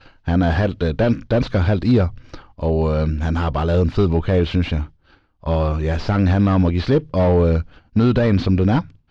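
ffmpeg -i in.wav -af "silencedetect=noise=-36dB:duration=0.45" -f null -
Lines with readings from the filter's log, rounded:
silence_start: 4.87
silence_end: 5.43 | silence_duration: 0.57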